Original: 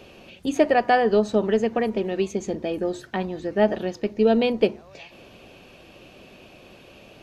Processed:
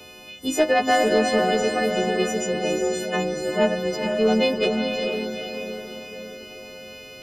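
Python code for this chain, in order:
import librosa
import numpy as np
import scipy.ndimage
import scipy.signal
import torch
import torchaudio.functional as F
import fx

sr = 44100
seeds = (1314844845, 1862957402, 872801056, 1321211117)

y = fx.freq_snap(x, sr, grid_st=3)
y = 10.0 ** (-9.0 / 20.0) * np.tanh(y / 10.0 ** (-9.0 / 20.0))
y = fx.echo_diffused(y, sr, ms=455, feedback_pct=51, wet_db=-3.5)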